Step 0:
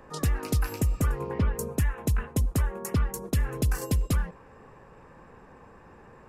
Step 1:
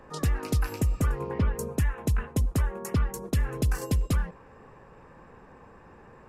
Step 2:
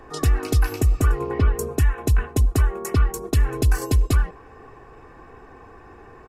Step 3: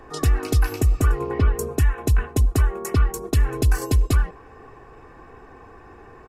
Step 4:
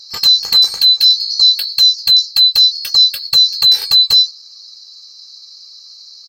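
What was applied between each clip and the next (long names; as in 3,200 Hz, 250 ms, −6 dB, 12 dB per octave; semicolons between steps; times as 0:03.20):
high-shelf EQ 9,500 Hz −6 dB
comb filter 2.7 ms, depth 59%; level +5 dB
no processing that can be heard
neighbouring bands swapped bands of 4,000 Hz; level +7 dB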